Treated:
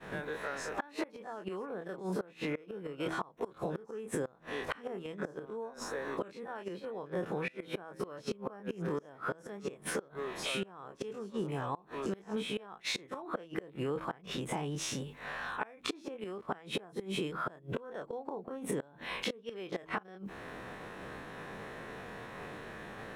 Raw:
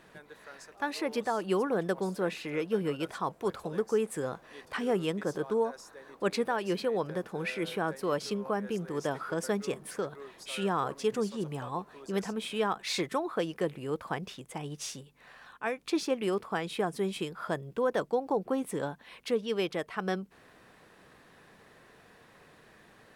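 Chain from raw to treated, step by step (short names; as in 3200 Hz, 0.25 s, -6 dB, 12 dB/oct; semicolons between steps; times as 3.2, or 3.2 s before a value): spectral dilation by 60 ms; high shelf 4000 Hz -10.5 dB; de-hum 81.05 Hz, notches 4; flipped gate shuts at -21 dBFS, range -25 dB; notch 4700 Hz, Q 9.2; expander -52 dBFS; compressor 6:1, threshold -45 dBFS, peak gain reduction 17 dB; gain +11 dB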